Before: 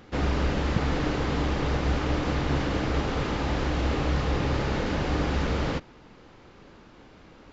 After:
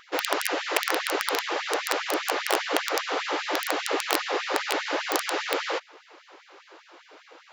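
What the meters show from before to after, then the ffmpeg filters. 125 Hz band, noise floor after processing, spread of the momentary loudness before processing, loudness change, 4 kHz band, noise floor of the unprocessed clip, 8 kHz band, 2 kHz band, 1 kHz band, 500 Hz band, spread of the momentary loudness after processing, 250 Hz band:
under -40 dB, -56 dBFS, 2 LU, +0.5 dB, +7.5 dB, -52 dBFS, n/a, +6.0 dB, +4.0 dB, +1.5 dB, 2 LU, -8.0 dB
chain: -af "aeval=exprs='(mod(6.31*val(0)+1,2)-1)/6.31':c=same,afftfilt=real='re*gte(b*sr/1024,280*pow(1800/280,0.5+0.5*sin(2*PI*5*pts/sr)))':imag='im*gte(b*sr/1024,280*pow(1800/280,0.5+0.5*sin(2*PI*5*pts/sr)))':win_size=1024:overlap=0.75,volume=5.5dB"

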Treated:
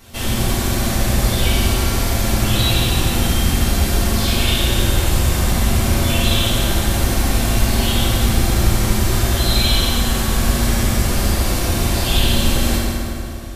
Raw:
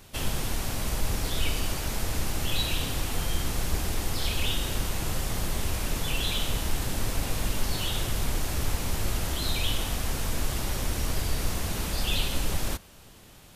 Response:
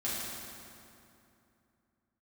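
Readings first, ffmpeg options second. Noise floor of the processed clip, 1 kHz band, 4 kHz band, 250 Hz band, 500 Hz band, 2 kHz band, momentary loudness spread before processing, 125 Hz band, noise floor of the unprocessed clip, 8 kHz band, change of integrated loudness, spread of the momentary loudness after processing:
-23 dBFS, +12.0 dB, +11.5 dB, +15.5 dB, +13.0 dB, +11.5 dB, 3 LU, +14.0 dB, -51 dBFS, +11.0 dB, +12.5 dB, 3 LU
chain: -filter_complex "[1:a]atrim=start_sample=2205[a];[0:a][a]afir=irnorm=-1:irlink=0,volume=6dB"

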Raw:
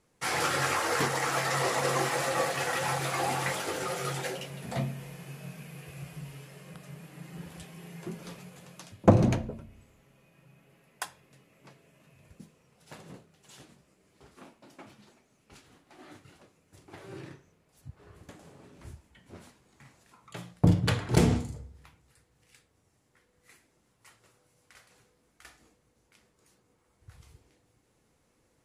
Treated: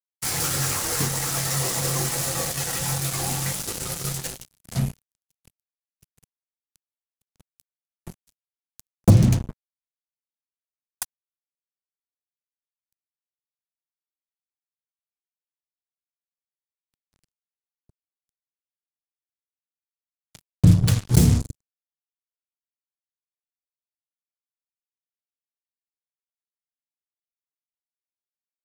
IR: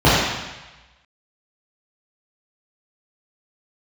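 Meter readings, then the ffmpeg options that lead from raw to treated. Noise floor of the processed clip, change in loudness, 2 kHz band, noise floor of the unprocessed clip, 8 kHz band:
under -85 dBFS, +7.0 dB, -3.0 dB, -71 dBFS, +11.0 dB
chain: -af "acontrast=60,acrusher=bits=3:mix=0:aa=0.5,bass=f=250:g=15,treble=f=4k:g=15,volume=-10.5dB"

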